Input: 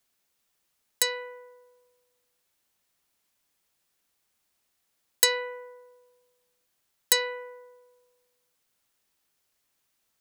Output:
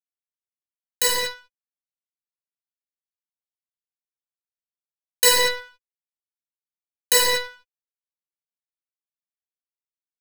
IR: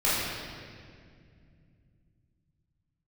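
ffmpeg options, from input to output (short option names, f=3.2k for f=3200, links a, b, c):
-filter_complex "[0:a]asplit=2[a][b];[b]acrusher=bits=5:dc=4:mix=0:aa=0.000001,volume=-7dB[c];[a][c]amix=inputs=2:normalize=0,aeval=exprs='sgn(val(0))*max(abs(val(0))-0.0251,0)':c=same[d];[1:a]atrim=start_sample=2205,afade=t=out:st=0.3:d=0.01,atrim=end_sample=13671[e];[d][e]afir=irnorm=-1:irlink=0,volume=-5dB"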